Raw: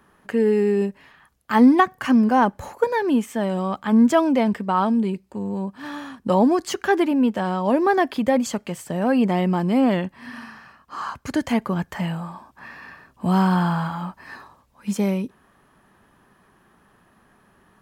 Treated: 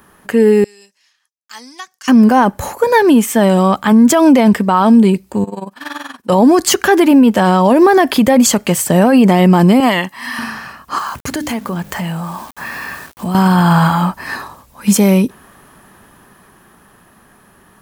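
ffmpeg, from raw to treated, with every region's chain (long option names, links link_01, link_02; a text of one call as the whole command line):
ffmpeg -i in.wav -filter_complex "[0:a]asettb=1/sr,asplit=3[link_01][link_02][link_03];[link_01]atrim=end=0.644[link_04];[link_02]atrim=start=0.64:end=2.08,asetpts=PTS-STARTPTS,afade=type=in:duration=0.004:curve=qsin,afade=type=out:start_time=1.436:duration=0.004:curve=qsin,agate=range=-33dB:threshold=-50dB:ratio=3:release=100:detection=peak,bandpass=frequency=5700:width_type=q:width=3.4[link_05];[link_03]atrim=start=2.076[link_06];[link_04][link_05]acrossfade=duration=0.004:curve1=hsin:curve2=qsin[link_07];[link_07][link_06]acrossfade=duration=0.004:curve1=qsin:curve2=hsin,asettb=1/sr,asplit=3[link_08][link_09][link_10];[link_08]atrim=end=5.444[link_11];[link_09]atrim=start=5.44:end=6.3,asetpts=PTS-STARTPTS,afade=type=in:duration=0.004:curve=qsin,afade=type=out:start_time=0.856:duration=0.004:curve=qsin,highpass=frequency=750:poles=1,highshelf=frequency=6500:gain=-5,tremolo=f=21:d=0.857[link_12];[link_10]atrim=start=6.296[link_13];[link_11][link_12]acrossfade=duration=0.004:curve1=hsin:curve2=qsin[link_14];[link_14][link_13]acrossfade=duration=0.004:curve1=qsin:curve2=hsin,asettb=1/sr,asplit=3[link_15][link_16][link_17];[link_15]atrim=end=9.804[link_18];[link_16]atrim=start=9.8:end=10.39,asetpts=PTS-STARTPTS,afade=type=in:duration=0.004:curve=qsin,afade=type=out:start_time=0.586:duration=0.004:curve=qsin,highpass=frequency=900:poles=1,aecho=1:1:1:0.42,atrim=end_sample=26019[link_19];[link_17]atrim=start=10.386[link_20];[link_18][link_19]acrossfade=duration=0.004:curve1=hsin:curve2=qsin[link_21];[link_21][link_20]acrossfade=duration=0.004:curve1=qsin:curve2=hsin,asettb=1/sr,asplit=3[link_22][link_23][link_24];[link_22]atrim=end=10.984[link_25];[link_23]atrim=start=10.98:end=13.35,asetpts=PTS-STARTPTS,afade=type=in:duration=0.004:curve=qsin,afade=type=out:start_time=2.366:duration=0.004:curve=qsin,bandreject=frequency=50:width_type=h:width=6,bandreject=frequency=100:width_type=h:width=6,bandreject=frequency=150:width_type=h:width=6,bandreject=frequency=200:width_type=h:width=6,bandreject=frequency=250:width_type=h:width=6,bandreject=frequency=300:width_type=h:width=6,acompressor=threshold=-37dB:ratio=3:attack=3.2:release=140:knee=1:detection=peak,aeval=exprs='val(0)*gte(abs(val(0)),0.00237)':channel_layout=same[link_26];[link_24]atrim=start=13.346[link_27];[link_25][link_26]acrossfade=duration=0.004:curve1=hsin:curve2=qsin[link_28];[link_28][link_27]acrossfade=duration=0.004:curve1=qsin:curve2=hsin,highshelf=frequency=7300:gain=11.5,dynaudnorm=framelen=290:gausssize=17:maxgain=11.5dB,alimiter=level_in=10dB:limit=-1dB:release=50:level=0:latency=1,volume=-1dB" out.wav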